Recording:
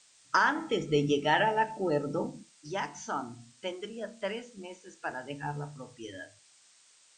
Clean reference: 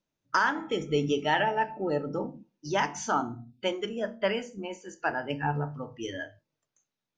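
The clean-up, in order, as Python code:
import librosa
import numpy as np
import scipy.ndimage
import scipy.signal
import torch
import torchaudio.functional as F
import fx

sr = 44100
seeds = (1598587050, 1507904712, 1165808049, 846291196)

y = fx.noise_reduce(x, sr, print_start_s=6.59, print_end_s=7.09, reduce_db=23.0)
y = fx.fix_level(y, sr, at_s=2.52, step_db=7.0)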